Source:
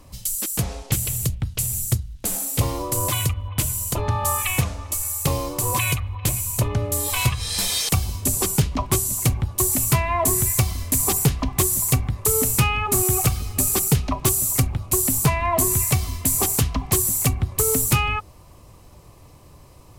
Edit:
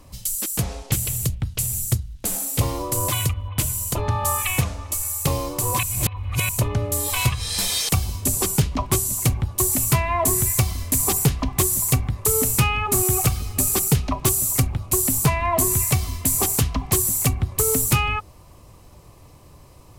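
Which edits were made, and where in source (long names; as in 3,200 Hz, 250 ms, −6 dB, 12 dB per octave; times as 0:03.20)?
0:05.83–0:06.49: reverse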